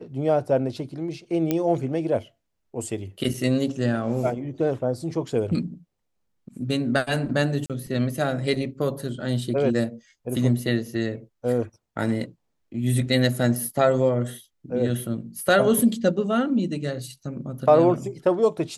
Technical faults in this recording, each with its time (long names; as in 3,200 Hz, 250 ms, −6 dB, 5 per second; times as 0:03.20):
0:01.51: click −10 dBFS
0:07.66–0:07.70: drop-out 37 ms